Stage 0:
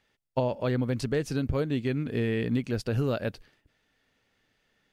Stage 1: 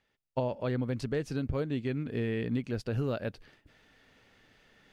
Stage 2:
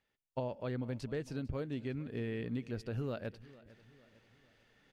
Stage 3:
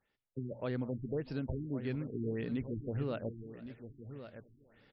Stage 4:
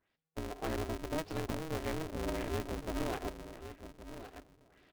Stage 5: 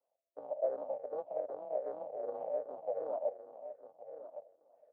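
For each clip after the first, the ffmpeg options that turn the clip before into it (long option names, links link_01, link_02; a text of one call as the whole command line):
ffmpeg -i in.wav -af "highshelf=frequency=6000:gain=-7,areverse,acompressor=mode=upward:threshold=-45dB:ratio=2.5,areverse,volume=-4dB" out.wav
ffmpeg -i in.wav -af "aecho=1:1:451|902|1353|1804:0.1|0.047|0.0221|0.0104,volume=-6.5dB" out.wav
ffmpeg -i in.wav -af "bandreject=frequency=60:width_type=h:width=6,bandreject=frequency=120:width_type=h:width=6,aecho=1:1:1113:0.266,afftfilt=real='re*lt(b*sr/1024,380*pow(5800/380,0.5+0.5*sin(2*PI*1.7*pts/sr)))':imag='im*lt(b*sr/1024,380*pow(5800/380,0.5+0.5*sin(2*PI*1.7*pts/sr)))':win_size=1024:overlap=0.75,volume=2dB" out.wav
ffmpeg -i in.wav -af "aeval=exprs='val(0)*sgn(sin(2*PI*160*n/s))':channel_layout=same" out.wav
ffmpeg -i in.wav -af "afftfilt=real='re*pow(10,9/40*sin(2*PI*(0.59*log(max(b,1)*sr/1024/100)/log(2)-(-2.6)*(pts-256)/sr)))':imag='im*pow(10,9/40*sin(2*PI*(0.59*log(max(b,1)*sr/1024/100)/log(2)-(-2.6)*(pts-256)/sr)))':win_size=1024:overlap=0.75,afreqshift=-130,asuperpass=centerf=610:order=4:qfactor=3.2,volume=10dB" out.wav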